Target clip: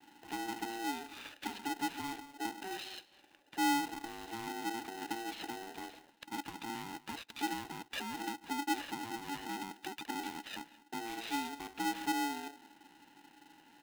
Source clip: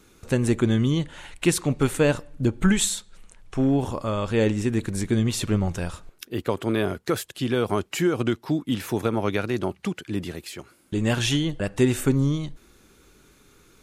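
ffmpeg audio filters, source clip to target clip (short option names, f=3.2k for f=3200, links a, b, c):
-filter_complex "[0:a]aresample=8000,asoftclip=type=tanh:threshold=-21.5dB,aresample=44100,alimiter=level_in=4dB:limit=-24dB:level=0:latency=1:release=13,volume=-4dB,acompressor=threshold=-34dB:ratio=6,agate=range=-33dB:threshold=-56dB:ratio=3:detection=peak,asplit=3[a][b][c];[a]bandpass=f=270:t=q:w=8,volume=0dB[d];[b]bandpass=f=2.29k:t=q:w=8,volume=-6dB[e];[c]bandpass=f=3.01k:t=q:w=8,volume=-9dB[f];[d][e][f]amix=inputs=3:normalize=0,asplit=2[g][h];[h]aecho=0:1:210:0.0944[i];[g][i]amix=inputs=2:normalize=0,aeval=exprs='val(0)*sgn(sin(2*PI*570*n/s))':c=same,volume=7.5dB"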